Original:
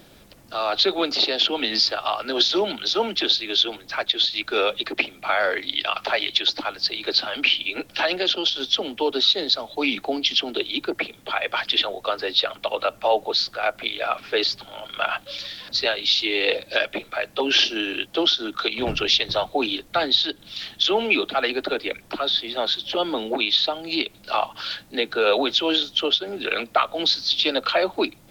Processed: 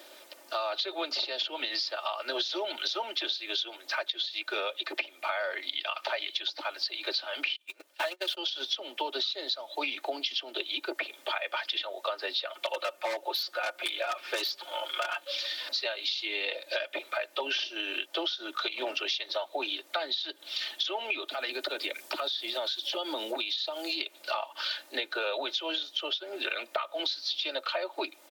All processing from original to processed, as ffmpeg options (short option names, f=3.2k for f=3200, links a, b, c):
-filter_complex "[0:a]asettb=1/sr,asplit=3[a][b][c];[a]atrim=end=7.564[d];[b]atrim=start=7.56:end=8.37,asetpts=PTS-STARTPTS,afade=t=in:d=0.004:c=qsin,afade=t=out:st=0.806:d=0.004:c=qsin,aeval=exprs='val(0)+0.5*0.0531*sgn(val(0))':c=same,agate=range=-36dB:threshold=-21dB:ratio=16:release=100:detection=peak[e];[c]atrim=start=8.366[f];[d][e]acrossfade=d=0.004:c1=hsin:c2=qsin[g];[g][f]acrossfade=d=0.004:c1=qsin:c2=hsin,asettb=1/sr,asplit=3[h][i][j];[h]atrim=end=12.544[k];[i]atrim=start=12.54:end=15.25,asetpts=PTS-STARTPTS,afade=t=in:d=0.004:c=qsin,afade=t=out:st=2.706:d=0.004:c=qsin,aecho=1:1:5.6:0.64,atrim=end_sample=119511,aeval=exprs='0.168*(abs(mod(val(0)/0.168+3,4)-2)-1)':c=same[l];[j]atrim=start=15.246[m];[k][l]acrossfade=d=0.004:c1=hsin:c2=qsin[n];[n][m]acrossfade=d=0.004:c1=qsin:c2=hsin,asettb=1/sr,asplit=3[o][p][q];[o]atrim=end=21.284[r];[p]atrim=start=21.28:end=24.01,asetpts=PTS-STARTPTS,afade=t=in:d=0.004:c=qsin,afade=t=out:st=2.726:d=0.004:c=qsin,acompressor=threshold=-30dB:ratio=2.5:attack=3.2:release=140:knee=1:detection=peak,bass=f=250:g=9,treble=f=4k:g=8[s];[q]atrim=start=24.006[t];[r][s]acrossfade=d=0.004:c1=hsin:c2=qsin[u];[u][t]acrossfade=d=0.004:c1=qsin:c2=hsin,highpass=f=420:w=0.5412,highpass=f=420:w=1.3066,aecho=1:1:3.3:0.63,acompressor=threshold=-29dB:ratio=10"